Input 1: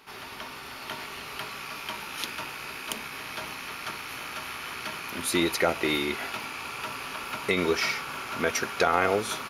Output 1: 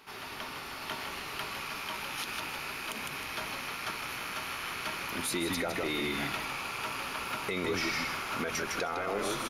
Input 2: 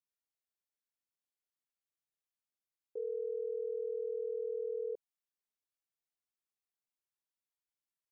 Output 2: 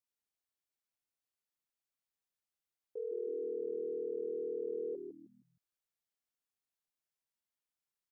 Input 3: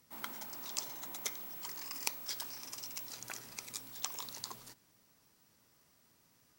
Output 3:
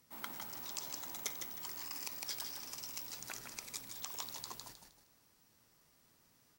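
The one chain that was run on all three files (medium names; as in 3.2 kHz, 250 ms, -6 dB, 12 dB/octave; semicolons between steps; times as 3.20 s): on a send: frequency-shifting echo 156 ms, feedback 31%, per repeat -78 Hz, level -6.5 dB; on the sum: saturation -9 dBFS; peak limiter -21.5 dBFS; trim -1.5 dB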